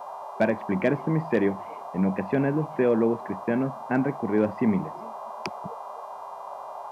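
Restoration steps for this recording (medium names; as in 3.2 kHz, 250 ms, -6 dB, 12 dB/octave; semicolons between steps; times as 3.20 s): clip repair -12 dBFS; de-hum 402.9 Hz, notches 36; noise print and reduce 30 dB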